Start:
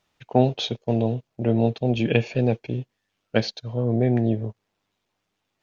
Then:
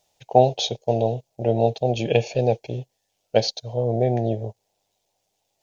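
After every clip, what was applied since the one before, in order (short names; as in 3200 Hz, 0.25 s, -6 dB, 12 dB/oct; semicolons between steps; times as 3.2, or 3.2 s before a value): EQ curve 130 Hz 0 dB, 260 Hz -6 dB, 550 Hz +8 dB, 800 Hz +9 dB, 1200 Hz -10 dB, 6700 Hz +12 dB; gain -1.5 dB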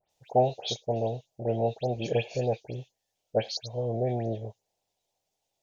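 dispersion highs, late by 0.105 s, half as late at 2900 Hz; gain -7.5 dB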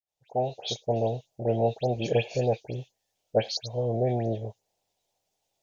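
opening faded in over 0.93 s; gain +2.5 dB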